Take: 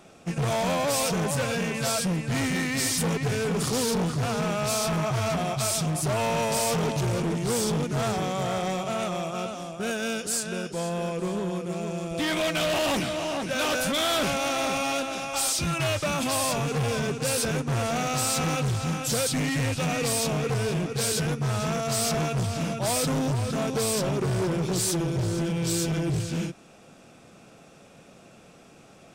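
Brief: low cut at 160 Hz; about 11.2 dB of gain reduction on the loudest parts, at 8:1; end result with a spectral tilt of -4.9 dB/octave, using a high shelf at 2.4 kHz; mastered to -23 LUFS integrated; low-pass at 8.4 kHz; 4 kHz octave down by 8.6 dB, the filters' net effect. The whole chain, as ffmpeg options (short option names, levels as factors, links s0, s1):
-af "highpass=160,lowpass=8400,highshelf=f=2400:g=-3.5,equalizer=f=4000:t=o:g=-8,acompressor=threshold=0.0158:ratio=8,volume=6.31"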